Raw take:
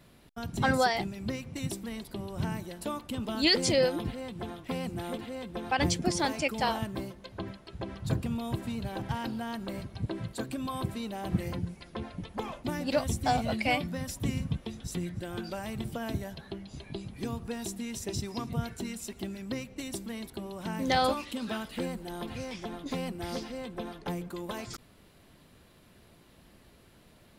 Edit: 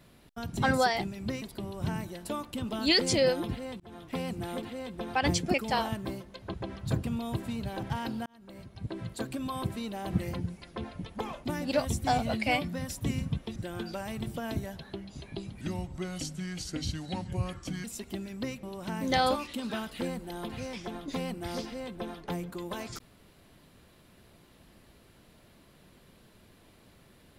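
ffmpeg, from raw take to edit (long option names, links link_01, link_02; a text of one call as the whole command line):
ffmpeg -i in.wav -filter_complex "[0:a]asplit=10[link_01][link_02][link_03][link_04][link_05][link_06][link_07][link_08][link_09][link_10];[link_01]atrim=end=1.422[link_11];[link_02]atrim=start=1.978:end=4.36,asetpts=PTS-STARTPTS,afade=type=out:start_time=2.378:duration=0.004:curve=hsin[link_12];[link_03]atrim=start=4.36:end=6.102,asetpts=PTS-STARTPTS,afade=type=in:duration=0.29[link_13];[link_04]atrim=start=6.438:end=7.442[link_14];[link_05]atrim=start=7.728:end=9.45,asetpts=PTS-STARTPTS,afade=type=out:start_time=1.718:duration=0.004:curve=hsin[link_15];[link_06]atrim=start=9.45:end=14.752,asetpts=PTS-STARTPTS,afade=type=in:duration=0.92[link_16];[link_07]atrim=start=15.138:end=17.194[link_17];[link_08]atrim=start=17.19:end=18.93,asetpts=PTS-STARTPTS,asetrate=34398,aresample=44100[link_18];[link_09]atrim=start=18.926:end=19.722[link_19];[link_10]atrim=start=20.408[link_20];[link_12][link_13]concat=n=2:v=0:a=1[link_21];[link_11][link_21]acrossfade=duration=0.004:curve1=hsin:curve2=hsin[link_22];[link_22][link_14]acrossfade=duration=0.004:curve1=hsin:curve2=hsin[link_23];[link_15][link_16]concat=n=2:v=0:a=1[link_24];[link_23][link_24]acrossfade=duration=0.004:curve1=hsin:curve2=hsin[link_25];[link_25][link_17]acrossfade=duration=0.004:curve1=hsin:curve2=hsin[link_26];[link_26][link_18]acrossfade=duration=0.004:curve1=hsin:curve2=hsin[link_27];[link_27][link_19]acrossfade=duration=0.004:curve1=hsin:curve2=hsin[link_28];[link_28][link_20]acrossfade=duration=0.004:curve1=hsin:curve2=hsin" out.wav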